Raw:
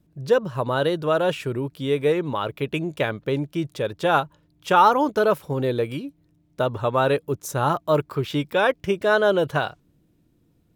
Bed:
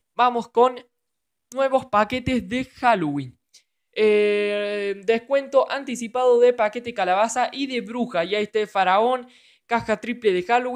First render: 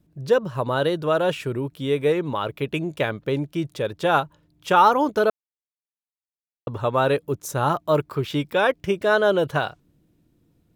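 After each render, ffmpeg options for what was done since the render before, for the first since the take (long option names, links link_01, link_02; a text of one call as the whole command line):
ffmpeg -i in.wav -filter_complex "[0:a]asettb=1/sr,asplit=3[link_01][link_02][link_03];[link_01]atrim=end=1.474[link_04];[link_02]atrim=start=1.47:end=2.06,asetpts=PTS-STARTPTS,afade=type=in:duration=0.004:curve=qsin,afade=type=out:start_time=0.586:duration=0.004:curve=qsin,bandreject=frequency=4700:width=11[link_05];[link_03]atrim=start=2.056[link_06];[link_04][link_05]acrossfade=duration=0.004:curve1=hsin:curve2=qsin[link_07];[link_07][link_06]acrossfade=duration=0.004:curve1=qsin:curve2=hsin,asplit=3[link_08][link_09][link_10];[link_08]atrim=end=5.3,asetpts=PTS-STARTPTS,afade=type=out:start_time=5.296:duration=0.004:curve=hsin[link_11];[link_09]atrim=start=5.3:end=6.67,asetpts=PTS-STARTPTS,volume=0[link_12];[link_10]atrim=start=6.67,asetpts=PTS-STARTPTS,afade=type=in:duration=0.004:curve=hsin[link_13];[link_11][link_12][link_13]concat=n=3:v=0:a=1" out.wav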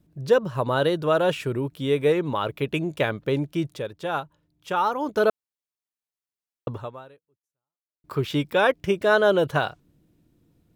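ffmpeg -i in.wav -filter_complex "[0:a]asplit=4[link_01][link_02][link_03][link_04];[link_01]atrim=end=3.89,asetpts=PTS-STARTPTS,afade=type=out:start_time=3.64:duration=0.25:silence=0.398107[link_05];[link_02]atrim=start=3.89:end=5,asetpts=PTS-STARTPTS,volume=-8dB[link_06];[link_03]atrim=start=5:end=8.04,asetpts=PTS-STARTPTS,afade=type=in:duration=0.25:silence=0.398107,afade=type=out:start_time=1.71:duration=1.33:curve=exp[link_07];[link_04]atrim=start=8.04,asetpts=PTS-STARTPTS,afade=type=in:duration=0.004:curve=hsin[link_08];[link_05][link_06][link_07][link_08]concat=n=4:v=0:a=1" out.wav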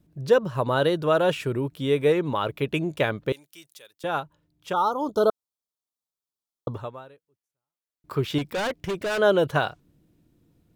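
ffmpeg -i in.wav -filter_complex "[0:a]asettb=1/sr,asplit=3[link_01][link_02][link_03];[link_01]atrim=end=3.324[link_04];[link_02]atrim=start=3.32:end=4.04,asetpts=PTS-STARTPTS,afade=type=in:duration=0.004:curve=qsin,afade=type=out:start_time=0.716:duration=0.004:curve=qsin,aderivative[link_05];[link_03]atrim=start=4.036[link_06];[link_04][link_05]acrossfade=duration=0.004:curve1=hsin:curve2=qsin[link_07];[link_07][link_06]acrossfade=duration=0.004:curve1=qsin:curve2=hsin,asettb=1/sr,asplit=3[link_08][link_09][link_10];[link_08]atrim=end=4.734[link_11];[link_09]atrim=start=4.73:end=6.75,asetpts=PTS-STARTPTS,afade=type=in:duration=0.004:curve=qsin,afade=type=out:start_time=2.016:duration=0.004:curve=qsin,asuperstop=centerf=2100:order=12:qfactor=1.2[link_12];[link_10]atrim=start=6.746[link_13];[link_11][link_12]acrossfade=duration=0.004:curve1=hsin:curve2=qsin[link_14];[link_14][link_13]acrossfade=duration=0.004:curve1=qsin:curve2=hsin,asettb=1/sr,asplit=3[link_15][link_16][link_17];[link_15]atrim=end=8.384[link_18];[link_16]atrim=start=8.38:end=9.19,asetpts=PTS-STARTPTS,afade=type=in:duration=0.004:curve=qsin,afade=type=out:start_time=0.806:duration=0.004:curve=qsin,volume=24.5dB,asoftclip=hard,volume=-24.5dB[link_19];[link_17]atrim=start=9.186[link_20];[link_18][link_19]acrossfade=duration=0.004:curve1=hsin:curve2=qsin[link_21];[link_21][link_20]acrossfade=duration=0.004:curve1=qsin:curve2=hsin" out.wav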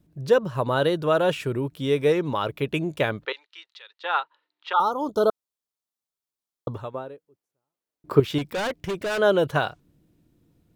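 ffmpeg -i in.wav -filter_complex "[0:a]asettb=1/sr,asplit=3[link_01][link_02][link_03];[link_01]atrim=end=1.834[link_04];[link_02]atrim=start=1.83:end=2.47,asetpts=PTS-STARTPTS,afade=type=in:duration=0.004:curve=qsin,afade=type=out:start_time=0.636:duration=0.004:curve=qsin,equalizer=frequency=5400:width_type=o:width=0.23:gain=13[link_05];[link_03]atrim=start=2.466[link_06];[link_04][link_05]acrossfade=duration=0.004:curve1=hsin:curve2=qsin[link_07];[link_07][link_06]acrossfade=duration=0.004:curve1=qsin:curve2=hsin,asettb=1/sr,asplit=3[link_08][link_09][link_10];[link_08]atrim=end=3.254[link_11];[link_09]atrim=start=3.25:end=4.8,asetpts=PTS-STARTPTS,afade=type=in:duration=0.004:curve=qsin,afade=type=out:start_time=1.546:duration=0.004:curve=qsin,highpass=frequency=490:width=0.5412,highpass=frequency=490:width=1.3066,equalizer=frequency=620:width_type=q:width=4:gain=-9,equalizer=frequency=920:width_type=q:width=4:gain=6,equalizer=frequency=1300:width_type=q:width=4:gain=6,equalizer=frequency=1900:width_type=q:width=4:gain=8,equalizer=frequency=2800:width_type=q:width=4:gain=5,equalizer=frequency=4000:width_type=q:width=4:gain=8,lowpass=frequency=4500:width=0.5412,lowpass=frequency=4500:width=1.3066[link_12];[link_10]atrim=start=4.796[link_13];[link_11][link_12]acrossfade=duration=0.004:curve1=hsin:curve2=qsin[link_14];[link_14][link_13]acrossfade=duration=0.004:curve1=qsin:curve2=hsin,asettb=1/sr,asplit=3[link_15][link_16][link_17];[link_15]atrim=end=6.944[link_18];[link_16]atrim=start=6.94:end=8.2,asetpts=PTS-STARTPTS,afade=type=in:duration=0.004:curve=qsin,afade=type=out:start_time=1.256:duration=0.004:curve=qsin,equalizer=frequency=360:width_type=o:width=2.9:gain=11.5[link_19];[link_17]atrim=start=8.196[link_20];[link_18][link_19]acrossfade=duration=0.004:curve1=hsin:curve2=qsin[link_21];[link_21][link_20]acrossfade=duration=0.004:curve1=qsin:curve2=hsin" out.wav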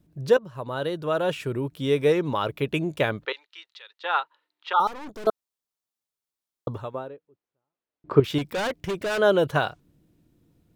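ffmpeg -i in.wav -filter_complex "[0:a]asettb=1/sr,asplit=3[link_01][link_02][link_03];[link_01]atrim=end=4.874[link_04];[link_02]atrim=start=4.87:end=5.27,asetpts=PTS-STARTPTS,afade=type=in:duration=0.004:curve=qsin,afade=type=out:start_time=0.396:duration=0.004:curve=qsin,aeval=exprs='(tanh(70.8*val(0)+0.7)-tanh(0.7))/70.8':channel_layout=same[link_05];[link_03]atrim=start=5.266[link_06];[link_04][link_05]acrossfade=duration=0.004:curve1=hsin:curve2=qsin[link_07];[link_07][link_06]acrossfade=duration=0.004:curve1=qsin:curve2=hsin,asettb=1/sr,asplit=3[link_08][link_09][link_10];[link_08]atrim=end=7.084[link_11];[link_09]atrim=start=7.08:end=8.24,asetpts=PTS-STARTPTS,afade=type=in:duration=0.004:curve=qsin,afade=type=out:start_time=1.156:duration=0.004:curve=qsin,lowpass=3200[link_12];[link_10]atrim=start=8.236[link_13];[link_11][link_12]acrossfade=duration=0.004:curve1=hsin:curve2=qsin[link_14];[link_14][link_13]acrossfade=duration=0.004:curve1=qsin:curve2=hsin,asplit=2[link_15][link_16];[link_15]atrim=end=0.37,asetpts=PTS-STARTPTS,afade=type=out:start_time=0.366:duration=0.004:curve=hsin:silence=0.237137[link_17];[link_16]atrim=start=0.37,asetpts=PTS-STARTPTS,afade=type=in:duration=1.52:silence=0.237137[link_18];[link_17][link_18]concat=n=2:v=0:a=1" out.wav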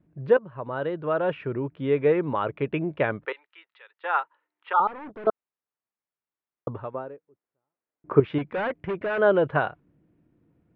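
ffmpeg -i in.wav -af "lowpass=frequency=2300:width=0.5412,lowpass=frequency=2300:width=1.3066,lowshelf=frequency=68:gain=-10.5" out.wav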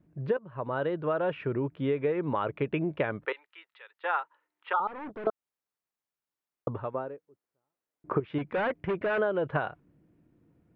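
ffmpeg -i in.wav -af "acompressor=threshold=-24dB:ratio=16" out.wav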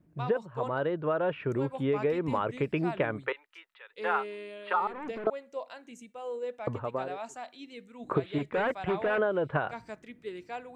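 ffmpeg -i in.wav -i bed.wav -filter_complex "[1:a]volume=-20dB[link_01];[0:a][link_01]amix=inputs=2:normalize=0" out.wav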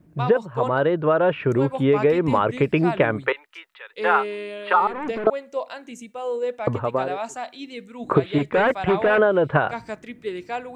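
ffmpeg -i in.wav -af "volume=10dB" out.wav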